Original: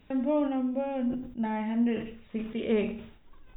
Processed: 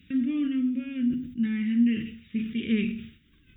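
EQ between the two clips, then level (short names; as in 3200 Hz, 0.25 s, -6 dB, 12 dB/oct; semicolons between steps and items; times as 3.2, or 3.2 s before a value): HPF 68 Hz 12 dB/oct; Chebyshev band-stop 240–2200 Hz, order 2; notch 970 Hz, Q 7.1; +5.5 dB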